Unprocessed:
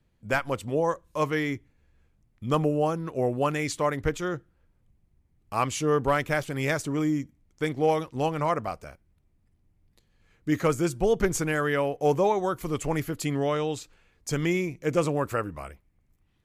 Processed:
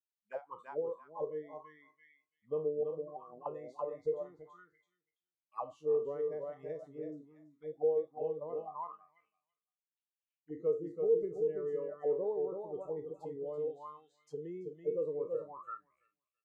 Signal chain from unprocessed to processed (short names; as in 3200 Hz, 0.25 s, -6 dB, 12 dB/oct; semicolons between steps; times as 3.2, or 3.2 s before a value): spectral trails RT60 0.36 s; spectral noise reduction 22 dB; bell 160 Hz +9 dB 1 oct; 2.83–3.46 negative-ratio compressor -30 dBFS, ratio -1; feedback echo 0.333 s, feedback 16%, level -5 dB; auto-wah 460–2800 Hz, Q 8.4, down, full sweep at -19 dBFS; gain -5 dB